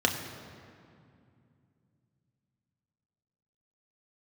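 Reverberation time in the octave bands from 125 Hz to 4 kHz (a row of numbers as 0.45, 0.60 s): 4.2, 3.6, 2.5, 2.3, 2.0, 1.5 s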